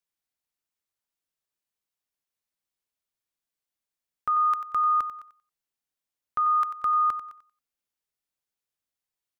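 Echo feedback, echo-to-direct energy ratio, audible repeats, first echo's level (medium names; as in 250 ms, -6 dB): 21%, -11.5 dB, 2, -11.5 dB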